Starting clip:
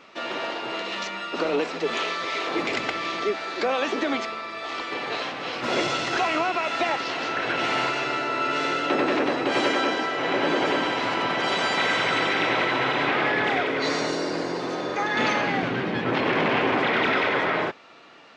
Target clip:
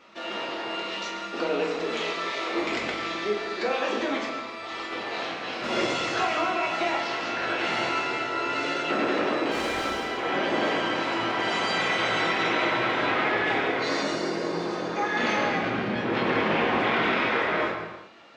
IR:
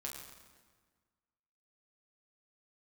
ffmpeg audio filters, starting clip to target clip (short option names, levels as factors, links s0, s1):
-filter_complex "[0:a]asettb=1/sr,asplit=3[s0][s1][s2];[s0]atrim=end=9.514[s3];[s1]atrim=start=9.51:end=10.05,asetpts=PTS-STARTPTS,afade=t=in:d=0.004:c=qsin,afade=t=out:st=0.536:d=0.004:c=qsin,volume=15,asoftclip=hard,volume=0.0668[s4];[s2]atrim=start=10.046[s5];[s3][s4]acrossfade=d=0.004:c1=hsin:c2=qsin[s6];[s6][s5]acrossfade=d=0.004:c1=qsin:c2=hsin[s7];[1:a]atrim=start_sample=2205,afade=t=out:st=0.45:d=0.01,atrim=end_sample=20286[s8];[s7][s8]afir=irnorm=-1:irlink=0"